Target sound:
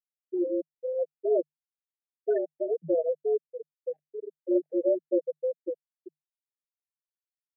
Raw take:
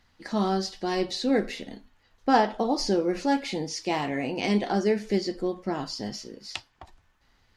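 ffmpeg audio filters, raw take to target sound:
-af "afftfilt=real='re*gte(hypot(re,im),0.316)':imag='im*gte(hypot(re,im),0.316)':win_size=1024:overlap=0.75,asuperstop=centerf=870:order=12:qfactor=0.87,afreqshift=150"

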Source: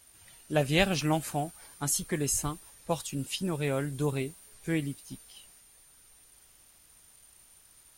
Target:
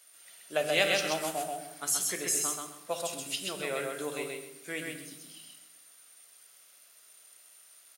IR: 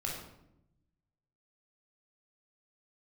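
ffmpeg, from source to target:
-filter_complex "[0:a]highpass=520,equalizer=f=860:w=4.1:g=-8,aecho=1:1:130|260|390:0.708|0.163|0.0375,asplit=2[a][b];[1:a]atrim=start_sample=2205[c];[b][c]afir=irnorm=-1:irlink=0,volume=-6dB[d];[a][d]amix=inputs=2:normalize=0,volume=-2.5dB"

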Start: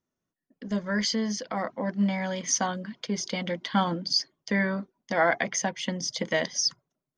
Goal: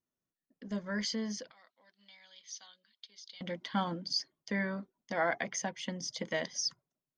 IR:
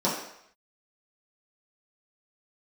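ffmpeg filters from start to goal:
-filter_complex "[0:a]asettb=1/sr,asplit=3[a][b][c];[a]atrim=end=1.514[d];[b]atrim=start=1.51:end=3.41,asetpts=PTS-STARTPTS,afade=t=in:d=0.004:c=qsin,afade=t=out:st=1.896:d=0.004:c=qsin,bandpass=f=3.9k:t=q:w=4.1:csg=0[e];[c]atrim=start=3.406[f];[d][e]acrossfade=d=0.004:c1=hsin:c2=qsin[g];[g][f]acrossfade=d=0.004:c1=qsin:c2=hsin,volume=-8dB"

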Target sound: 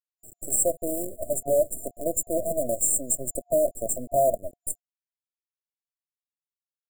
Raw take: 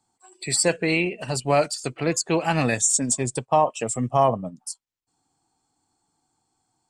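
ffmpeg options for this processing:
-af "lowshelf=f=430:t=q:w=1.5:g=-10.5,aecho=1:1:3.3:0.7,acompressor=threshold=-30dB:ratio=1.5,acrusher=bits=5:dc=4:mix=0:aa=0.000001,asoftclip=type=hard:threshold=-21dB,afftfilt=real='re*(1-between(b*sr/4096,700,7100))':imag='im*(1-between(b*sr/4096,700,7100))':win_size=4096:overlap=0.75,volume=5dB"

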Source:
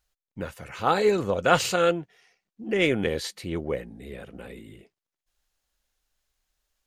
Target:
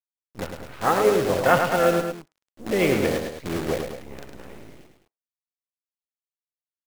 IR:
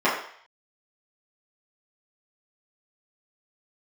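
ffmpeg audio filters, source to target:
-filter_complex "[0:a]asplit=4[a][b][c][d];[b]asetrate=22050,aresample=44100,atempo=2,volume=-18dB[e];[c]asetrate=55563,aresample=44100,atempo=0.793701,volume=-10dB[f];[d]asetrate=66075,aresample=44100,atempo=0.66742,volume=-13dB[g];[a][e][f][g]amix=inputs=4:normalize=0,lowpass=2.1k,acrusher=bits=6:dc=4:mix=0:aa=0.000001,aecho=1:1:105|209.9:0.501|0.282,asplit=2[h][i];[1:a]atrim=start_sample=2205,afade=t=out:st=0.15:d=0.01,atrim=end_sample=7056[j];[i][j]afir=irnorm=-1:irlink=0,volume=-42dB[k];[h][k]amix=inputs=2:normalize=0,volume=1dB"

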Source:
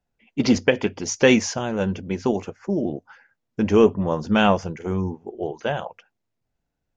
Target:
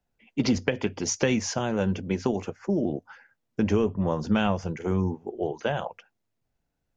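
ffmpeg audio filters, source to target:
-filter_complex "[0:a]acrossover=split=150[a][b];[b]acompressor=threshold=-22dB:ratio=6[c];[a][c]amix=inputs=2:normalize=0"

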